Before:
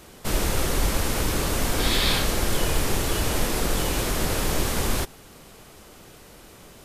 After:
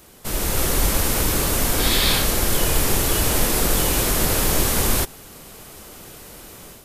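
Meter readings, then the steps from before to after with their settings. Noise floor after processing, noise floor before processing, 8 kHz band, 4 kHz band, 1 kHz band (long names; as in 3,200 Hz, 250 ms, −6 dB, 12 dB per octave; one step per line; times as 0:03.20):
−43 dBFS, −48 dBFS, +7.5 dB, +4.0 dB, +3.0 dB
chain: high-shelf EQ 9,900 Hz +11.5 dB
automatic gain control gain up to 8 dB
level −3 dB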